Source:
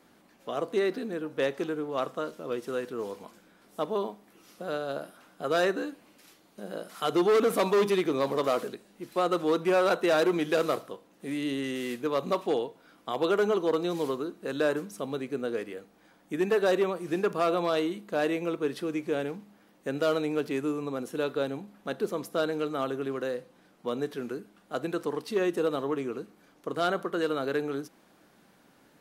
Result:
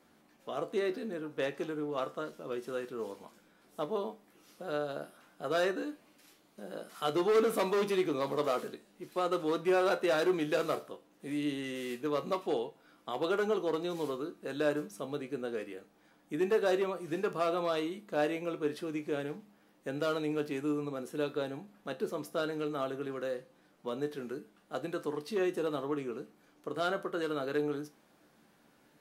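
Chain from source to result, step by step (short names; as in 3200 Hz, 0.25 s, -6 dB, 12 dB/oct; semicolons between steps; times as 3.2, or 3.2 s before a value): resonator 74 Hz, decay 0.21 s, harmonics all, mix 70%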